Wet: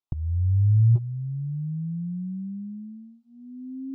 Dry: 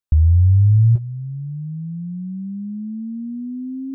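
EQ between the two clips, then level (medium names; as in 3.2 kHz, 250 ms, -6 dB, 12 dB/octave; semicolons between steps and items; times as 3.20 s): distance through air 160 m; bass shelf 210 Hz -8.5 dB; static phaser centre 350 Hz, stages 8; +4.0 dB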